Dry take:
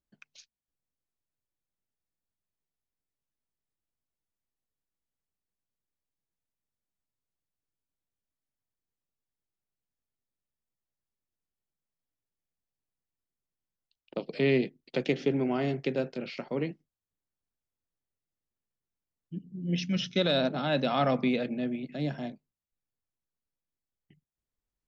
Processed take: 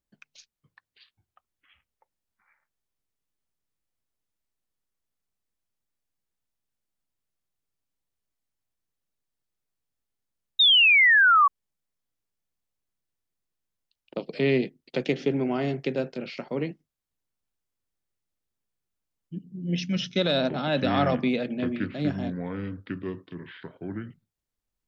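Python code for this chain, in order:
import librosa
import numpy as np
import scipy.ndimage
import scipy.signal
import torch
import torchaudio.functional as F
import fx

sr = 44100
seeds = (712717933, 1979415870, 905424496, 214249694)

y = fx.echo_pitch(x, sr, ms=464, semitones=-6, count=3, db_per_echo=-6.0)
y = fx.spec_paint(y, sr, seeds[0], shape='fall', start_s=10.59, length_s=0.89, low_hz=1100.0, high_hz=3800.0, level_db=-19.0)
y = F.gain(torch.from_numpy(y), 2.0).numpy()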